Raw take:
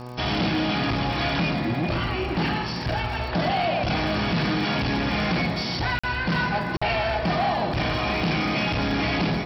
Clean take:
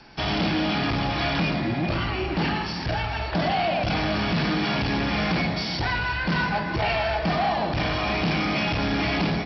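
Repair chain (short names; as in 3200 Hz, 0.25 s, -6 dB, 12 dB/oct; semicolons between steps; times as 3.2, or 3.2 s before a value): de-click; de-hum 123.2 Hz, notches 10; interpolate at 5.99/6.77, 45 ms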